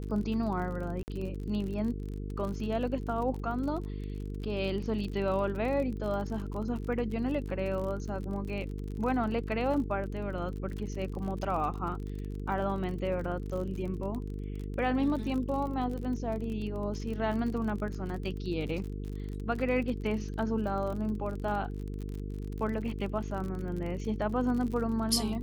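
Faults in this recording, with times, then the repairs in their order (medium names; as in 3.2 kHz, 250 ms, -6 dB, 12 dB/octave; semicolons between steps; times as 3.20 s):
buzz 50 Hz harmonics 9 -37 dBFS
crackle 41 per s -37 dBFS
1.03–1.08 s: dropout 49 ms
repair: de-click; de-hum 50 Hz, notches 9; interpolate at 1.03 s, 49 ms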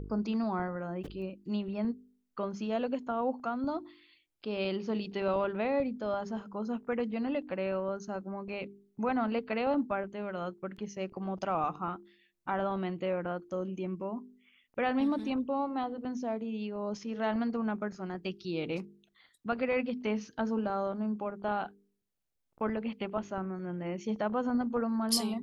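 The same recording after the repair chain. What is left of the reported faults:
nothing left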